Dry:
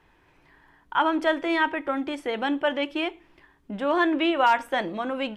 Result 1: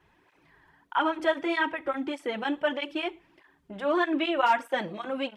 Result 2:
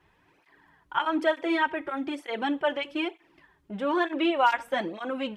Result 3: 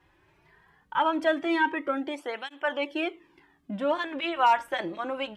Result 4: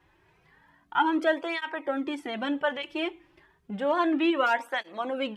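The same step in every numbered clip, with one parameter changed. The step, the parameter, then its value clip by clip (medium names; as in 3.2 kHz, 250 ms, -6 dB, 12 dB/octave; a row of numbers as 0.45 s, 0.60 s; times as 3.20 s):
cancelling through-zero flanger, nulls at: 1.6 Hz, 1.1 Hz, 0.2 Hz, 0.31 Hz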